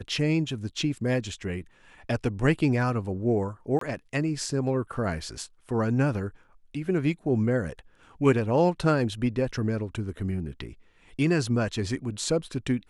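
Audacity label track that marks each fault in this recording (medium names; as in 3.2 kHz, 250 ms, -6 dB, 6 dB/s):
3.790000	3.810000	dropout 23 ms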